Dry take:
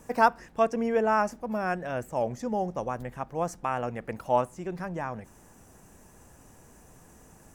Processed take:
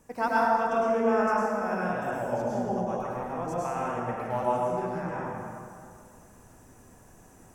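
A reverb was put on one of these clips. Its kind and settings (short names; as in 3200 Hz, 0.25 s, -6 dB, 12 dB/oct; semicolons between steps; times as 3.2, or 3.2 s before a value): plate-style reverb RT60 2.3 s, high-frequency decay 0.55×, pre-delay 90 ms, DRR -7.5 dB; gain -8 dB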